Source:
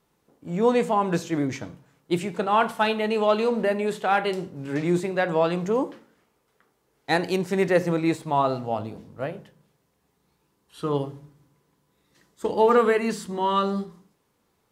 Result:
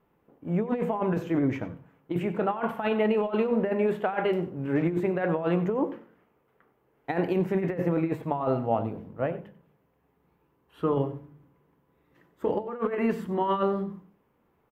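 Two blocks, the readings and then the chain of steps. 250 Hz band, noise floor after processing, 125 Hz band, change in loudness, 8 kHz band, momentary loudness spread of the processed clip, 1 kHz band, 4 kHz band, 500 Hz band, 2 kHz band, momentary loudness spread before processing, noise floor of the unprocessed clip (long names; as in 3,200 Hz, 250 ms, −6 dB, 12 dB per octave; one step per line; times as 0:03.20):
−1.0 dB, −70 dBFS, 0.0 dB, −3.5 dB, below −15 dB, 8 LU, −7.0 dB, −12.0 dB, −3.5 dB, −7.5 dB, 12 LU, −71 dBFS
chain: flat-topped bell 6,200 Hz −14 dB
compressor whose output falls as the input rises −24 dBFS, ratio −0.5
high-shelf EQ 2,100 Hz −9 dB
mains-hum notches 50/100/150/200 Hz
on a send: single-tap delay 94 ms −16.5 dB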